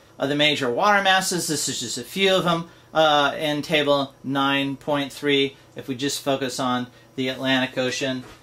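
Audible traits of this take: noise floor -51 dBFS; spectral tilt -3.5 dB/oct

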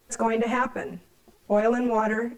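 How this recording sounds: tremolo saw up 7.5 Hz, depth 45%; a quantiser's noise floor 12-bit, dither triangular; a shimmering, thickened sound

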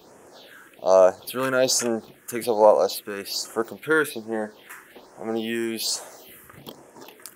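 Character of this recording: phasing stages 4, 1.2 Hz, lowest notch 650–4000 Hz

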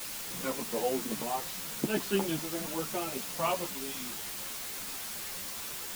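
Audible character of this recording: tremolo saw up 0.82 Hz, depth 55%; a quantiser's noise floor 6-bit, dither triangular; a shimmering, thickened sound

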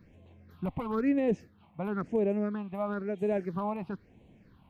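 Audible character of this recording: phasing stages 6, 1 Hz, lowest notch 410–1400 Hz

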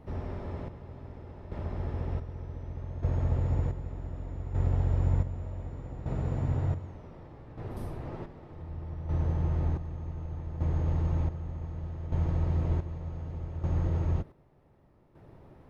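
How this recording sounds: chopped level 0.66 Hz, depth 65%, duty 45%

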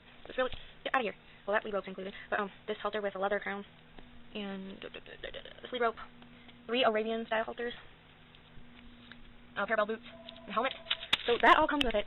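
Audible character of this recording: noise floor -57 dBFS; spectral tilt -1.0 dB/oct

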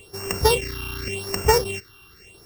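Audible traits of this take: a buzz of ramps at a fixed pitch in blocks of 16 samples; phasing stages 6, 0.87 Hz, lowest notch 540–3700 Hz

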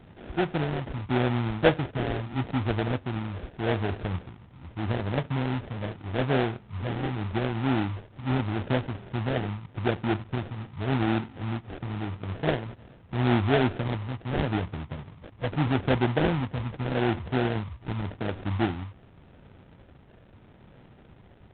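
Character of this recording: phasing stages 8, 0.83 Hz, lowest notch 380–1300 Hz; aliases and images of a low sample rate 1100 Hz, jitter 20%; G.726

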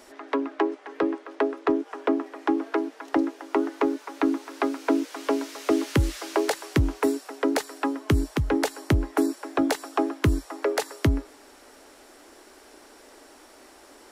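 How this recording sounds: noise floor -52 dBFS; spectral tilt -6.0 dB/oct

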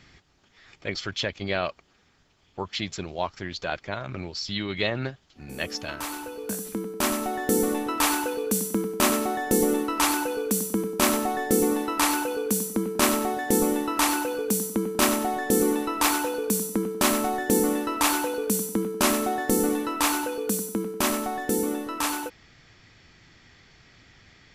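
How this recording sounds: noise floor -62 dBFS; spectral tilt -3.5 dB/oct

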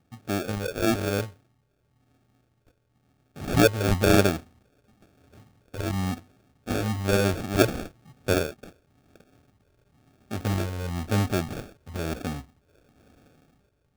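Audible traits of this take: phasing stages 12, 1 Hz, lowest notch 210–3800 Hz; aliases and images of a low sample rate 1000 Hz, jitter 0%

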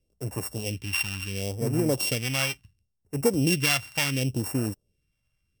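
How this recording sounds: a buzz of ramps at a fixed pitch in blocks of 16 samples; phasing stages 2, 0.71 Hz, lowest notch 370–3200 Hz; Vorbis

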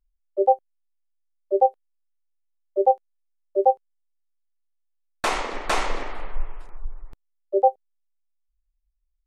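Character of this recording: noise floor -73 dBFS; spectral tilt -2.0 dB/oct

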